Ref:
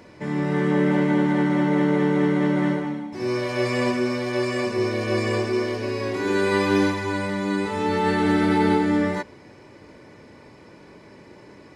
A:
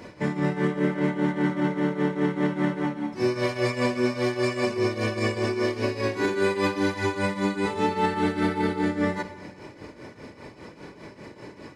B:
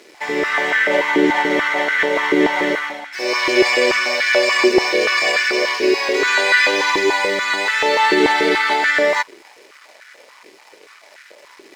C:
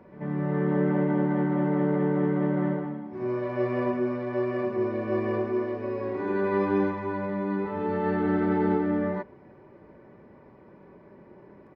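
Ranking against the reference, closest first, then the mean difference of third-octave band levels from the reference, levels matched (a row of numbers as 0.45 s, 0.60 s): A, C, B; 4.0 dB, 6.0 dB, 10.0 dB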